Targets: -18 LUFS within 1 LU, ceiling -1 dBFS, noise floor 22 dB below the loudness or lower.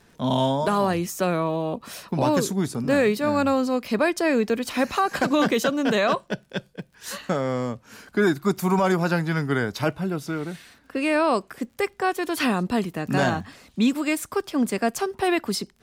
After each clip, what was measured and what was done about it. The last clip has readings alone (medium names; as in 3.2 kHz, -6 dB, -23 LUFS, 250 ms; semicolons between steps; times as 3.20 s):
tick rate 30 per s; loudness -24.0 LUFS; peak level -10.5 dBFS; loudness target -18.0 LUFS
-> de-click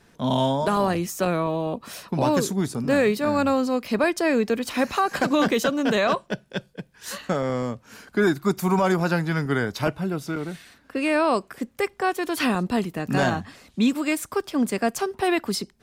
tick rate 0.19 per s; loudness -24.0 LUFS; peak level -10.0 dBFS; loudness target -18.0 LUFS
-> trim +6 dB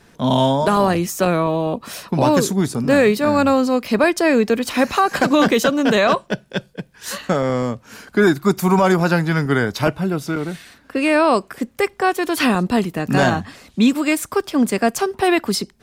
loudness -18.0 LUFS; peak level -4.0 dBFS; noise floor -52 dBFS